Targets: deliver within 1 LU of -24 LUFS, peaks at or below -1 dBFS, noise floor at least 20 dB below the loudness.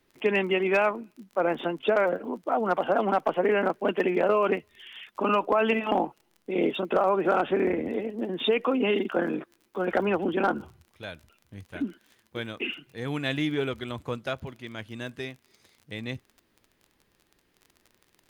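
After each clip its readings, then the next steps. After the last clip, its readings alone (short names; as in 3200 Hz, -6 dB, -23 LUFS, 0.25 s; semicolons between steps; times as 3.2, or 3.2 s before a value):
ticks 34/s; loudness -27.0 LUFS; peak -13.5 dBFS; loudness target -24.0 LUFS
-> de-click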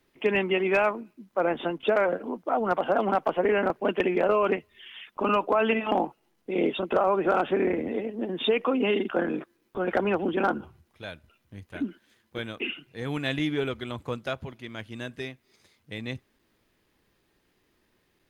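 ticks 0.33/s; loudness -27.0 LUFS; peak -10.0 dBFS; loudness target -24.0 LUFS
-> gain +3 dB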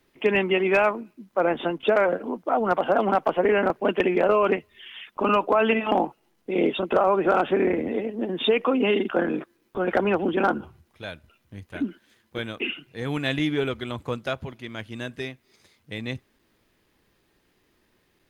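loudness -24.0 LUFS; peak -7.0 dBFS; noise floor -68 dBFS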